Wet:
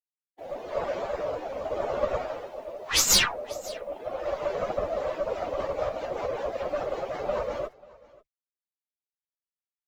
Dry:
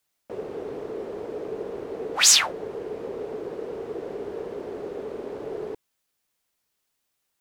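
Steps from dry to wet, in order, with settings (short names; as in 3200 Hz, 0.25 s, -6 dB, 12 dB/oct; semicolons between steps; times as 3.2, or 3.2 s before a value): HPF 260 Hz 6 dB/oct; reverb removal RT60 0.89 s; steep low-pass 5500 Hz 96 dB/oct; bell 1600 Hz +2 dB 0.83 oct; AGC gain up to 14 dB; rotary speaker horn 1.1 Hz, later 7 Hz, at 3.38; added harmonics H 2 -11 dB, 5 -43 dB, 6 -19 dB, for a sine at -2 dBFS; requantised 10-bit, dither none; plain phase-vocoder stretch 1.8×; echo 0.728 s -22.5 dB; speed mistake 33 rpm record played at 45 rpm; gain -3 dB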